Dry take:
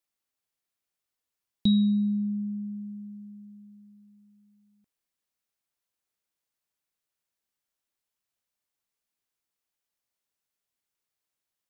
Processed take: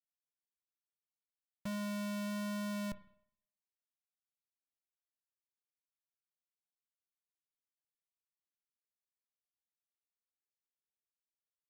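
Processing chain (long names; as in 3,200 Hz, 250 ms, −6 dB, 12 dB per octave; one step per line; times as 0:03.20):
Butterworth low-pass 3,300 Hz 72 dB per octave
in parallel at +0.5 dB: brickwall limiter −25.5 dBFS, peak gain reduction 9.5 dB
on the sum: flanger 1.1 Hz, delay 5.2 ms, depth 1.6 ms, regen −3%
comparator with hysteresis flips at −31 dBFS
on a send at −15.5 dB: convolution reverb, pre-delay 31 ms
on the sum: level −4.5 dB
Ogg Vorbis 128 kbit/s 48,000 Hz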